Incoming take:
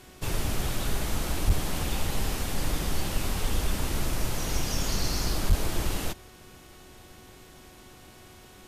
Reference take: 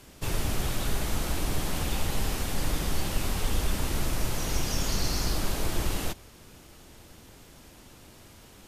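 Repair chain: clip repair -14 dBFS; de-hum 369.2 Hz, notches 11; 1.46–1.58 HPF 140 Hz 24 dB/oct; 5.48–5.6 HPF 140 Hz 24 dB/oct

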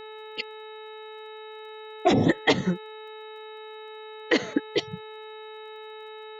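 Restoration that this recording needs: de-click; de-hum 433.4 Hz, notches 7; notch 3800 Hz, Q 30

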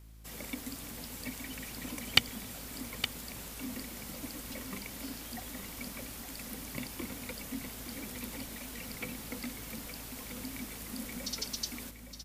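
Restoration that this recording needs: de-click; de-hum 54.3 Hz, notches 6; inverse comb 0.866 s -10 dB

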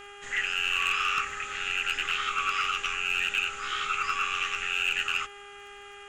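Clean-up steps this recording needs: clip repair -19 dBFS; de-click; de-hum 405 Hz, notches 8; expander -38 dBFS, range -21 dB

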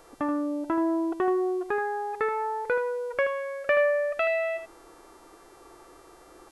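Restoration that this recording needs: de-hum 391.2 Hz, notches 30; inverse comb 79 ms -8.5 dB

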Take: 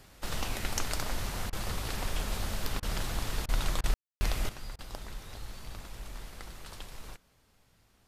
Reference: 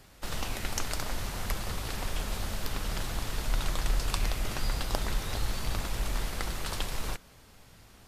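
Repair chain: room tone fill 3.94–4.21; interpolate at 1.5/2.8/3.46/3.81/4.76, 26 ms; gain correction +11.5 dB, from 4.49

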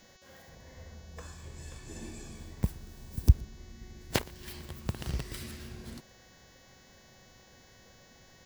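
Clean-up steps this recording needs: de-hum 372.3 Hz, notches 19; inverse comb 0.118 s -24 dB

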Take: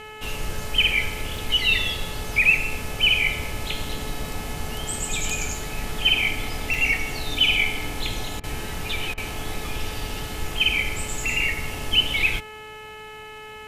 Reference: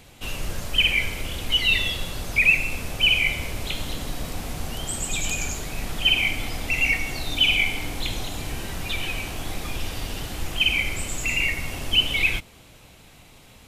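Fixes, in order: de-hum 430.1 Hz, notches 7; interpolate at 1.37/3.89/6.74/11.08, 2.6 ms; interpolate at 8.4/9.14, 35 ms

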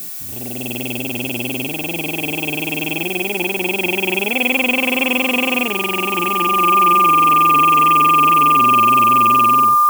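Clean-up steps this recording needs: de-hum 376.1 Hz, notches 7; notch 1200 Hz, Q 30; noise print and reduce 30 dB

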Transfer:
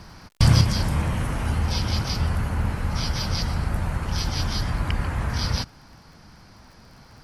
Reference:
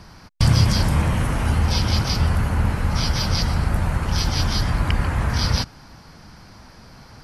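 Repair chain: de-click; gain correction +4.5 dB, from 0.61

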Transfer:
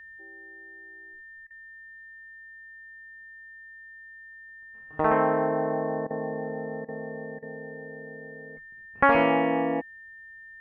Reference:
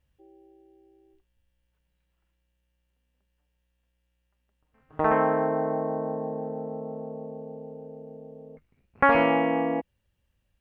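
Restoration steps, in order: notch 1800 Hz, Q 30; interpolate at 1.47/6.07/6.85/7.39, 34 ms

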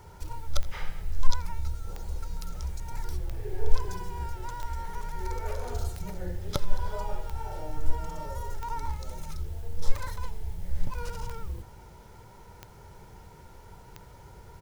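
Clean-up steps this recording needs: clip repair -6 dBFS; de-click; inverse comb 82 ms -20.5 dB

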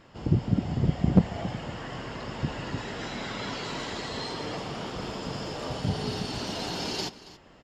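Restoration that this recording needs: clip repair -10 dBFS; inverse comb 0.277 s -17.5 dB

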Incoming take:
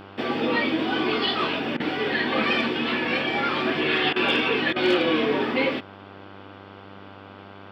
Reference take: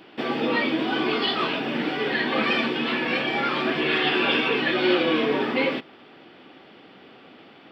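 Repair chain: clip repair -12 dBFS; de-hum 98.5 Hz, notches 16; interpolate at 1.77/4.13/4.73, 29 ms

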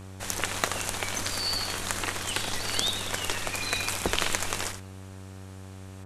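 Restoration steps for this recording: clip repair -5.5 dBFS; de-hum 95.1 Hz, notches 19; inverse comb 78 ms -9 dB

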